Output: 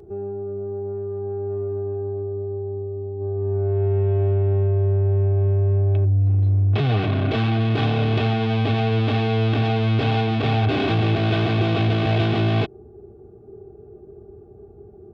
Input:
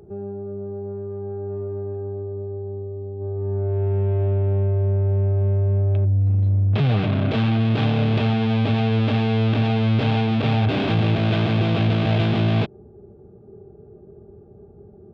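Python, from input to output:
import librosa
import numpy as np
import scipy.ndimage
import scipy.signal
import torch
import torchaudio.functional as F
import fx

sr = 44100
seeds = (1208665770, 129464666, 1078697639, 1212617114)

y = x + 0.48 * np.pad(x, (int(2.7 * sr / 1000.0), 0))[:len(x)]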